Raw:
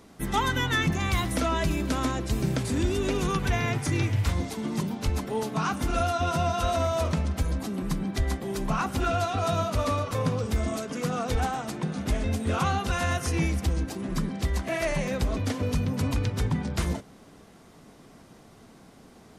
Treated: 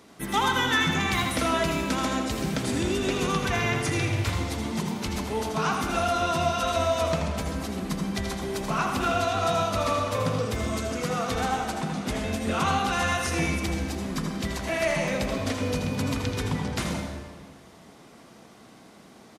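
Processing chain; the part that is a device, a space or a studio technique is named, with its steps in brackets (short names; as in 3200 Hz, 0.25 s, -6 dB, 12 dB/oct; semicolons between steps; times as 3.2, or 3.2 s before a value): PA in a hall (HPF 160 Hz 6 dB/oct; bell 3000 Hz +3 dB 2.3 oct; echo 81 ms -9 dB; reverb RT60 1.6 s, pre-delay 67 ms, DRR 4.5 dB)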